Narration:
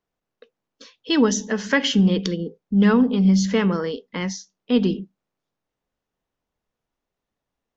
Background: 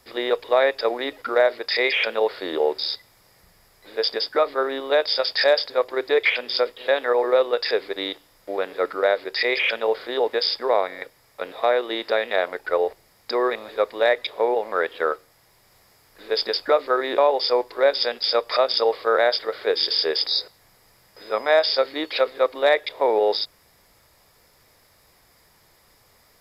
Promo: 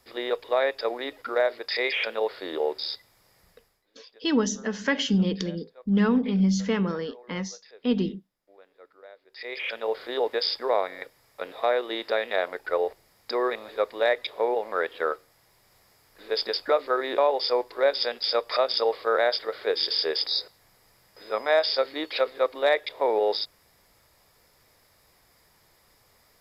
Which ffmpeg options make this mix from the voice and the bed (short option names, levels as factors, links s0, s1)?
-filter_complex "[0:a]adelay=3150,volume=0.531[s0];[1:a]volume=8.91,afade=t=out:st=3.5:d=0.36:silence=0.0707946,afade=t=in:st=9.28:d=0.79:silence=0.0595662[s1];[s0][s1]amix=inputs=2:normalize=0"